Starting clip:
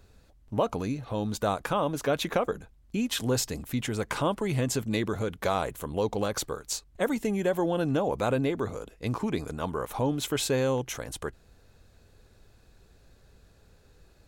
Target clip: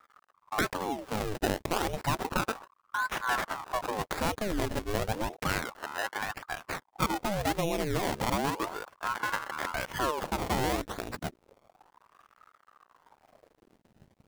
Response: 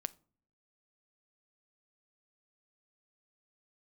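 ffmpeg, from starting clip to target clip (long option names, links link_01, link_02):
-filter_complex "[0:a]asplit=2[link_01][link_02];[link_02]acompressor=threshold=-37dB:ratio=6,volume=2dB[link_03];[link_01][link_03]amix=inputs=2:normalize=0,aeval=exprs='sgn(val(0))*max(abs(val(0))-0.00299,0)':channel_layout=same,asettb=1/sr,asplit=3[link_04][link_05][link_06];[link_04]atrim=end=5.614[link_07];[link_05]atrim=start=5.61:end=6.52,asetpts=PTS-STARTPTS,afade=type=in:duration=0.004:curve=qsin,afade=type=out:start_time=0.906:duration=0.004:curve=qsin,acrossover=split=180|780[link_08][link_09][link_10];[link_08]acompressor=threshold=-43dB:ratio=4[link_11];[link_09]acompressor=threshold=-25dB:ratio=4[link_12];[link_10]acompressor=threshold=-41dB:ratio=4[link_13];[link_11][link_12][link_13]amix=inputs=3:normalize=0[link_14];[link_06]atrim=start=6.516[link_15];[link_07][link_14]acrossfade=duration=0.004:curve1=hsin:curve2=qsin[link_16];[link_16][link_15]acrossfade=duration=0.004:curve1=qsin:curve2=hsin,acrusher=samples=27:mix=1:aa=0.000001:lfo=1:lforange=27:lforate=0.88,aeval=exprs='val(0)*sin(2*PI*710*n/s+710*0.8/0.32*sin(2*PI*0.32*n/s))':channel_layout=same,volume=-2dB"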